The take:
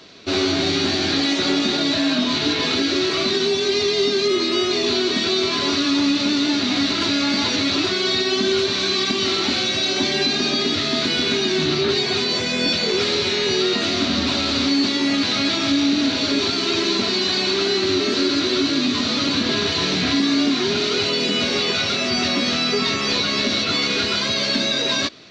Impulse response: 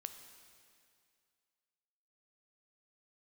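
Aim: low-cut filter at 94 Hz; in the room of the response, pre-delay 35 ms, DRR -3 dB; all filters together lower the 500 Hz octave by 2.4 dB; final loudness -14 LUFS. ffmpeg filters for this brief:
-filter_complex "[0:a]highpass=94,equalizer=f=500:t=o:g=-3.5,asplit=2[a][b];[1:a]atrim=start_sample=2205,adelay=35[c];[b][c]afir=irnorm=-1:irlink=0,volume=6.5dB[d];[a][d]amix=inputs=2:normalize=0,volume=0.5dB"

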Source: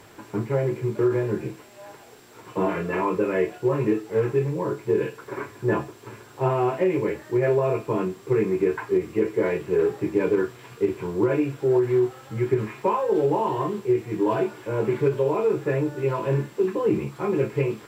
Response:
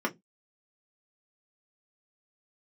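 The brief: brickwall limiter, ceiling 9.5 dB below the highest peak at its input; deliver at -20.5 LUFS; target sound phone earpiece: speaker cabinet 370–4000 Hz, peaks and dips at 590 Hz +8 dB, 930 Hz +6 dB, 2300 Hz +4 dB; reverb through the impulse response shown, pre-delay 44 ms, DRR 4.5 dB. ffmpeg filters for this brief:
-filter_complex "[0:a]alimiter=limit=-18dB:level=0:latency=1,asplit=2[a][b];[1:a]atrim=start_sample=2205,adelay=44[c];[b][c]afir=irnorm=-1:irlink=0,volume=-13dB[d];[a][d]amix=inputs=2:normalize=0,highpass=370,equalizer=f=590:t=q:w=4:g=8,equalizer=f=930:t=q:w=4:g=6,equalizer=f=2.3k:t=q:w=4:g=4,lowpass=f=4k:w=0.5412,lowpass=f=4k:w=1.3066,volume=5.5dB"

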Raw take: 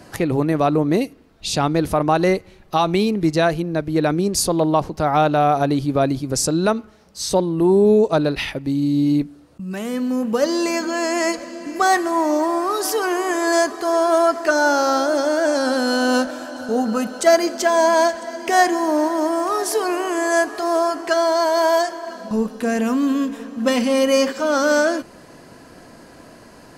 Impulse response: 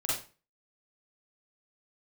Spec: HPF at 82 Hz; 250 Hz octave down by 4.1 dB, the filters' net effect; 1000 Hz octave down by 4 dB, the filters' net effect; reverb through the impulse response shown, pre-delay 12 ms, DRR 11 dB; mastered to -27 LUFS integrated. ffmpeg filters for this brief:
-filter_complex "[0:a]highpass=82,equalizer=f=250:t=o:g=-5,equalizer=f=1k:t=o:g=-5.5,asplit=2[a][b];[1:a]atrim=start_sample=2205,adelay=12[c];[b][c]afir=irnorm=-1:irlink=0,volume=-17.5dB[d];[a][d]amix=inputs=2:normalize=0,volume=-5.5dB"

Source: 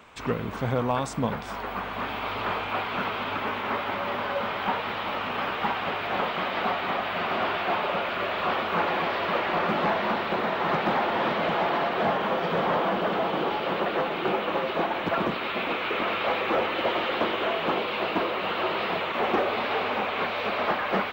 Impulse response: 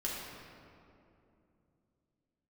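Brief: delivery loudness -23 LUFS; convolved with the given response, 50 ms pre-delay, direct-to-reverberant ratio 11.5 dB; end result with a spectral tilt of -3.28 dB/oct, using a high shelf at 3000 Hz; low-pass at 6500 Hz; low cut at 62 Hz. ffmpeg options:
-filter_complex "[0:a]highpass=62,lowpass=6.5k,highshelf=f=3k:g=-7.5,asplit=2[a][b];[1:a]atrim=start_sample=2205,adelay=50[c];[b][c]afir=irnorm=-1:irlink=0,volume=-15dB[d];[a][d]amix=inputs=2:normalize=0,volume=4.5dB"

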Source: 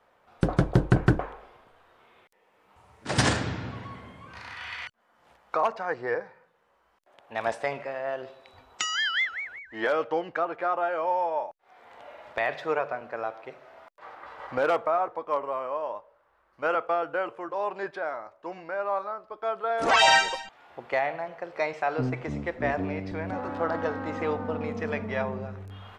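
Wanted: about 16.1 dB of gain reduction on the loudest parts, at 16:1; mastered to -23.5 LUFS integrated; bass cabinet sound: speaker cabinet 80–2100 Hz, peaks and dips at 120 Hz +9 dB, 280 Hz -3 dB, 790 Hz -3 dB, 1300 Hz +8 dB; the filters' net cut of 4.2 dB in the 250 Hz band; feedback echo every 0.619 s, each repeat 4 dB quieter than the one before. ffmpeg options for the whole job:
-af "equalizer=f=250:t=o:g=-7,acompressor=threshold=-32dB:ratio=16,highpass=f=80:w=0.5412,highpass=f=80:w=1.3066,equalizer=f=120:t=q:w=4:g=9,equalizer=f=280:t=q:w=4:g=-3,equalizer=f=790:t=q:w=4:g=-3,equalizer=f=1.3k:t=q:w=4:g=8,lowpass=f=2.1k:w=0.5412,lowpass=f=2.1k:w=1.3066,aecho=1:1:619|1238|1857|2476|3095|3714|4333|4952|5571:0.631|0.398|0.25|0.158|0.0994|0.0626|0.0394|0.0249|0.0157,volume=12dB"

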